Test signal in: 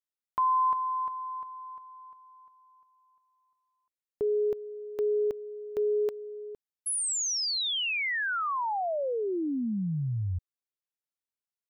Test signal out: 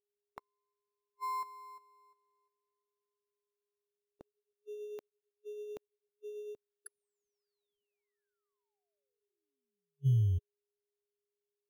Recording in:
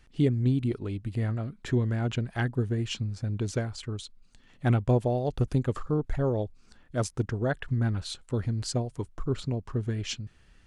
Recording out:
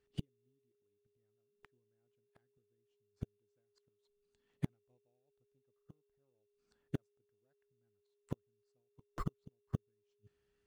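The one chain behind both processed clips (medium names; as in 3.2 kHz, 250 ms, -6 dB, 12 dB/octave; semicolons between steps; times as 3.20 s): high-pass 130 Hz 6 dB/octave; inverted gate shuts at -29 dBFS, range -35 dB; whistle 410 Hz -59 dBFS; in parallel at -11 dB: sample-and-hold 14×; on the sum: upward expansion 2.5:1, over -56 dBFS; trim +6 dB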